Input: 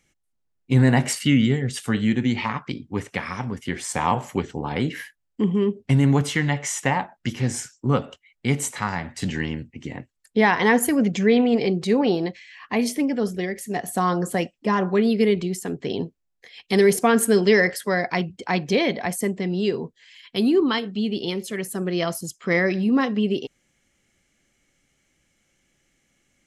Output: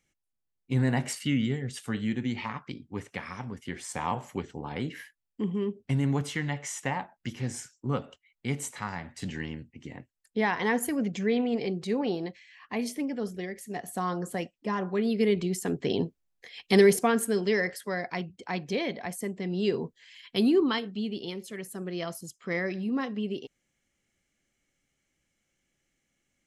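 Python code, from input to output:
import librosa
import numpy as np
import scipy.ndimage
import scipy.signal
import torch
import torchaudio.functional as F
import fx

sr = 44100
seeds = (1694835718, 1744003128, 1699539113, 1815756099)

y = fx.gain(x, sr, db=fx.line((14.93, -9.0), (15.69, -1.0), (16.77, -1.0), (17.26, -9.5), (19.29, -9.5), (19.75, -3.0), (20.4, -3.0), (21.34, -10.0)))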